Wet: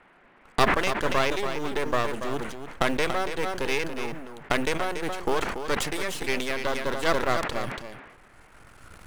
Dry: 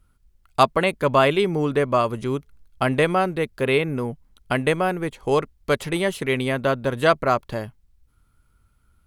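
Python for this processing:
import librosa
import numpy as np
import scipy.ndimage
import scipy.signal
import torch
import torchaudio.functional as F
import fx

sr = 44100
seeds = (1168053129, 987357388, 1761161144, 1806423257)

p1 = fx.recorder_agc(x, sr, target_db=-9.5, rise_db_per_s=16.0, max_gain_db=30)
p2 = scipy.signal.sosfilt(scipy.signal.butter(4, 9000.0, 'lowpass', fs=sr, output='sos'), p1)
p3 = fx.high_shelf(p2, sr, hz=6000.0, db=5.5)
p4 = fx.hpss(p3, sr, part='percussive', gain_db=4)
p5 = fx.low_shelf(p4, sr, hz=230.0, db=-7.5)
p6 = np.maximum(p5, 0.0)
p7 = fx.quant_float(p6, sr, bits=4)
p8 = fx.dmg_noise_band(p7, sr, seeds[0], low_hz=150.0, high_hz=2100.0, level_db=-52.0)
p9 = p8 + fx.echo_single(p8, sr, ms=284, db=-9.0, dry=0)
p10 = fx.sustainer(p9, sr, db_per_s=53.0)
y = p10 * 10.0 ** (-5.5 / 20.0)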